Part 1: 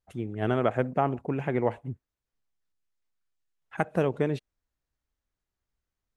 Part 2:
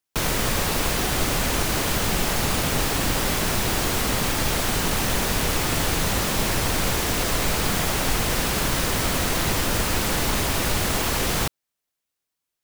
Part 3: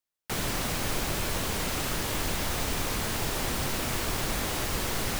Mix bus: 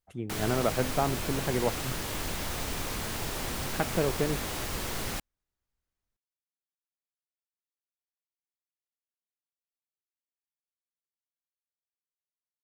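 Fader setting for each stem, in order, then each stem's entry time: -2.5 dB, off, -4.0 dB; 0.00 s, off, 0.00 s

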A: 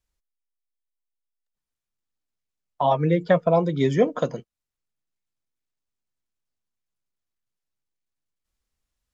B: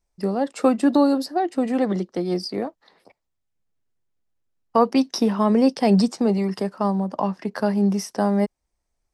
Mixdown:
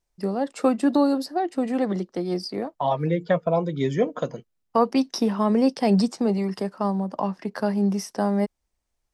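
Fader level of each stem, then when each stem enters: -3.0, -2.5 dB; 0.00, 0.00 s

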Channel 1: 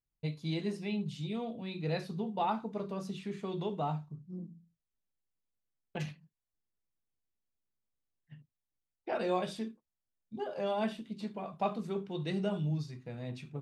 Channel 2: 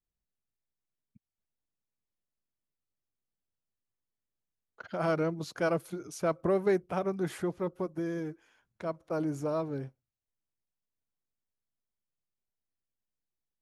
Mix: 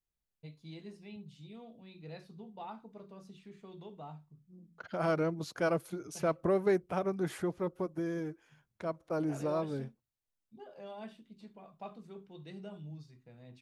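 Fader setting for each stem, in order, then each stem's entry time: -13.0, -1.5 dB; 0.20, 0.00 s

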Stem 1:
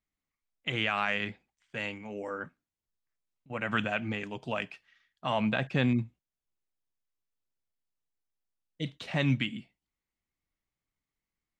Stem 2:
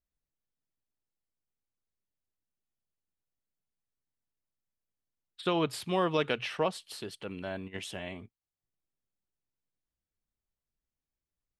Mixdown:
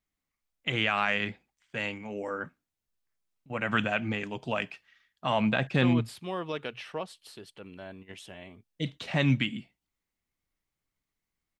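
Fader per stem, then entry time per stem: +2.5, -6.0 dB; 0.00, 0.35 s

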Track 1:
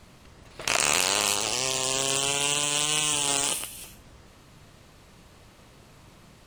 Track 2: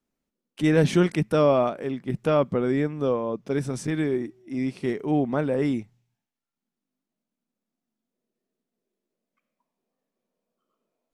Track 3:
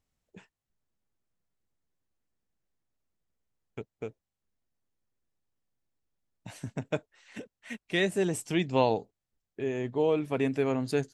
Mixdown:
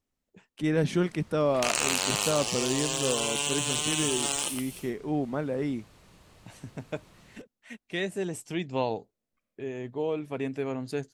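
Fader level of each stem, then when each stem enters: -4.0, -6.0, -4.0 dB; 0.95, 0.00, 0.00 s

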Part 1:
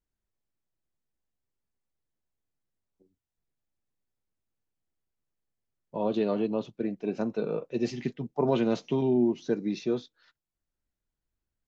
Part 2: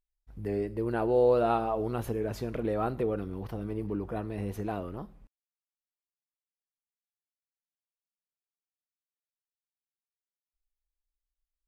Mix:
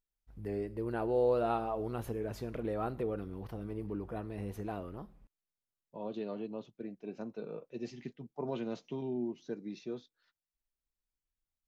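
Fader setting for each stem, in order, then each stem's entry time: -12.0, -5.5 dB; 0.00, 0.00 s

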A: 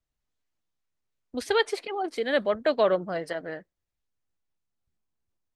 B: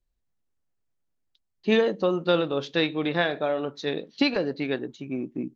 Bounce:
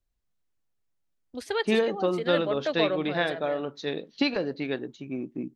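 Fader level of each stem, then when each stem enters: -5.0, -2.5 dB; 0.00, 0.00 s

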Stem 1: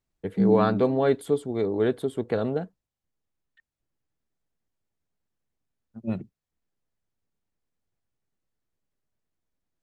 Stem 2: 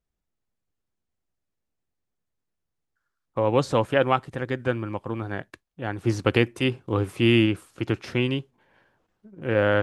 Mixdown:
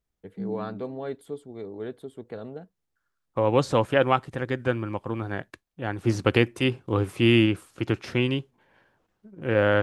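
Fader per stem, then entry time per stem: -11.5, 0.0 dB; 0.00, 0.00 s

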